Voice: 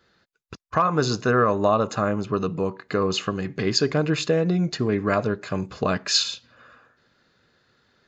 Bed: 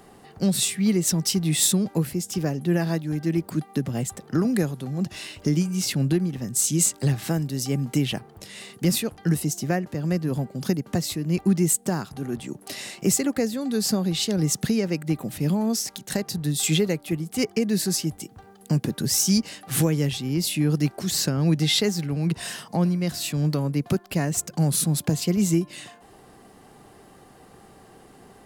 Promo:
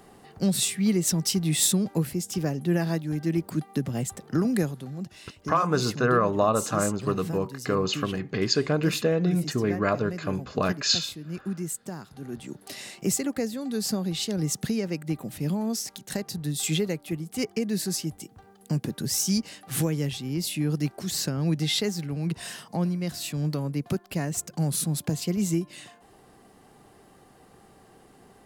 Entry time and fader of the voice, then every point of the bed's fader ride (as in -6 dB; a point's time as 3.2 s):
4.75 s, -2.5 dB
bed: 4.64 s -2 dB
5.16 s -11.5 dB
11.96 s -11.5 dB
12.49 s -4.5 dB